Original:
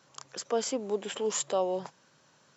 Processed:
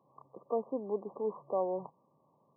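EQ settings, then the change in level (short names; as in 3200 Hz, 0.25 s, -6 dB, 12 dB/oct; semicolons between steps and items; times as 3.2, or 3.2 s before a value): HPF 95 Hz; brick-wall FIR low-pass 1200 Hz; -3.5 dB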